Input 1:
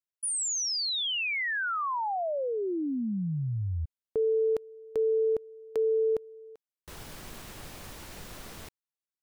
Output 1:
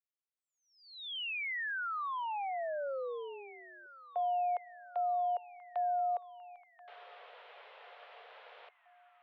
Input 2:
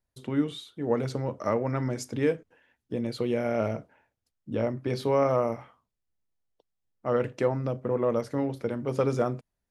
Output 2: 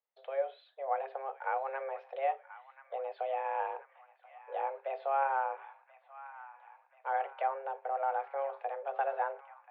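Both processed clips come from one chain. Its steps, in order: treble ducked by the level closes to 2300 Hz, closed at -26.5 dBFS; band-limited delay 1.033 s, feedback 62%, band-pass 1300 Hz, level -13.5 dB; mistuned SSB +270 Hz 200–3200 Hz; gain -6.5 dB

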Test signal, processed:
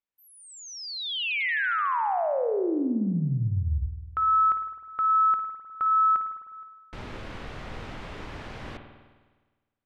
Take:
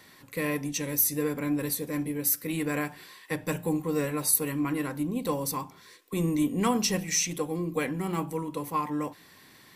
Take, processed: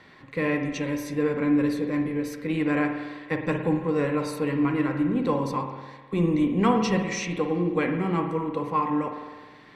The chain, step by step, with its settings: LPF 2800 Hz 12 dB/oct; spring tank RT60 1.4 s, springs 51 ms, chirp 70 ms, DRR 5.5 dB; gain +4 dB

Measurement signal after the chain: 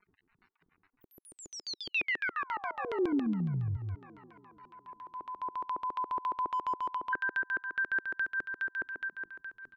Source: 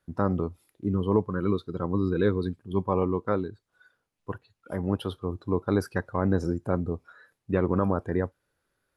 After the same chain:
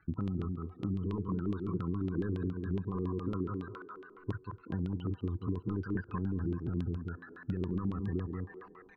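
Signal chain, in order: high shelf 8600 Hz +5.5 dB; in parallel at -12 dB: wrapped overs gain 17 dB; on the sum: low shelf 160 Hz +5 dB; echo 0.183 s -11 dB; harmonic-percussive split percussive -4 dB; limiter -18.5 dBFS; crackle 71/s -40 dBFS; loudest bins only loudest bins 32; fixed phaser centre 1400 Hz, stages 4; on a send: band-limited delay 0.207 s, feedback 62%, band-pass 1300 Hz, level -6 dB; on the sum: compressor 5:1, threshold -37 dBFS; LFO low-pass square 7.2 Hz 360–3300 Hz; gain +4 dB

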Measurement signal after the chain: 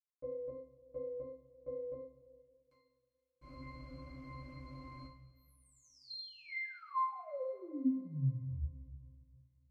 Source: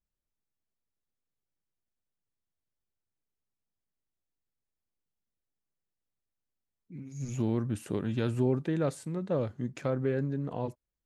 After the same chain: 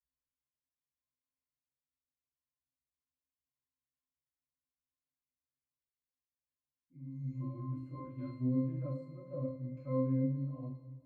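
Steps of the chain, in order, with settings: octave resonator C, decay 0.47 s; two-slope reverb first 0.43 s, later 2.4 s, from -18 dB, DRR -8 dB; gain -2 dB

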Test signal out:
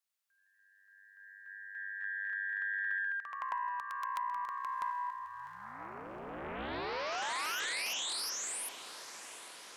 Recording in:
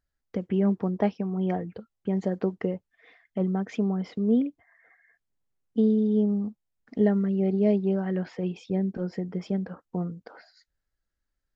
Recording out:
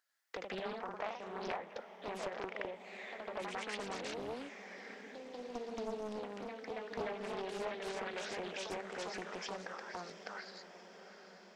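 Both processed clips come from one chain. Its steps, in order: HPF 910 Hz 12 dB/oct; compressor 5:1, threshold -46 dBFS; echoes that change speed 97 ms, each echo +1 st, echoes 3; diffused feedback echo 0.784 s, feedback 65%, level -12.5 dB; Doppler distortion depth 0.67 ms; gain +6 dB

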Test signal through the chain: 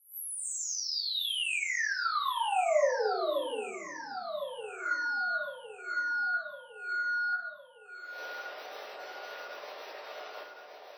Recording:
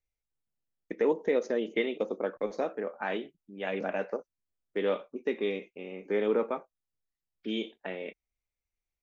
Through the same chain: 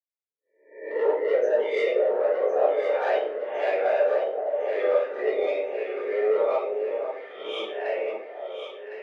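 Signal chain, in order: spectral swells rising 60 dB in 0.55 s; spectral noise reduction 13 dB; spectral gate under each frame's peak -25 dB strong; overdrive pedal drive 15 dB, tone 4900 Hz, clips at -14.5 dBFS; ladder high-pass 440 Hz, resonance 55%; on a send: echo with dull and thin repeats by turns 0.529 s, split 960 Hz, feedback 73%, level -5.5 dB; on the sum: shoebox room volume 63 m³, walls mixed, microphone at 1.2 m

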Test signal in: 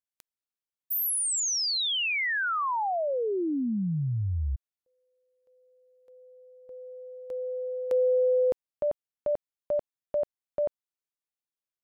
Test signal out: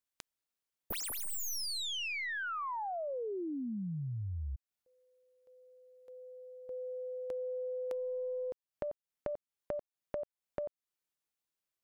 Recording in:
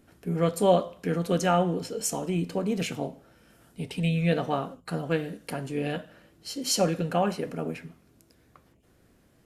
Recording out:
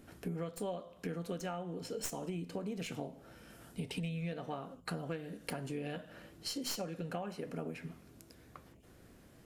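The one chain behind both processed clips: tracing distortion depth 0.049 ms; compressor 12:1, threshold -39 dBFS; gain +2.5 dB

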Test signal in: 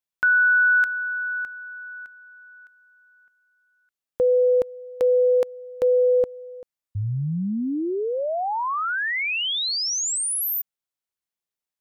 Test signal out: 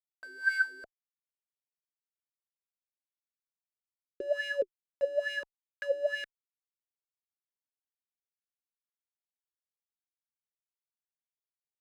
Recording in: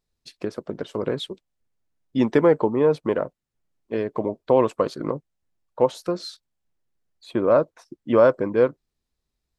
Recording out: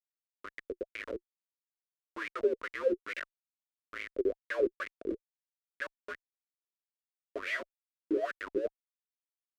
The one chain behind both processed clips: dynamic EQ 870 Hz, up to -6 dB, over -42 dBFS, Q 5.6; frequency shift +72 Hz; Schmitt trigger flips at -21.5 dBFS; fixed phaser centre 340 Hz, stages 4; wah 2.3 Hz 350–2300 Hz, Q 7.7; gain +9 dB

